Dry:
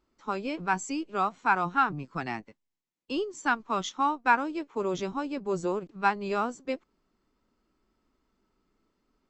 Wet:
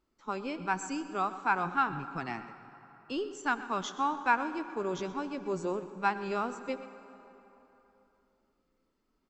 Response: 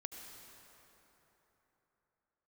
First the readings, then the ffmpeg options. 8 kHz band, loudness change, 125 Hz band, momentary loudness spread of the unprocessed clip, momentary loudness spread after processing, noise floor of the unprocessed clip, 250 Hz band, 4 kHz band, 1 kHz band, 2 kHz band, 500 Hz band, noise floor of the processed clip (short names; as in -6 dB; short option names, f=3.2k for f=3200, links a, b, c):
-3.5 dB, -3.5 dB, -3.5 dB, 10 LU, 10 LU, -81 dBFS, -3.5 dB, -3.5 dB, -3.5 dB, -3.5 dB, -3.5 dB, -77 dBFS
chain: -filter_complex "[0:a]aecho=1:1:125:0.141,asplit=2[a][b];[1:a]atrim=start_sample=2205,asetrate=48510,aresample=44100[c];[b][c]afir=irnorm=-1:irlink=0,volume=-1.5dB[d];[a][d]amix=inputs=2:normalize=0,volume=-7dB"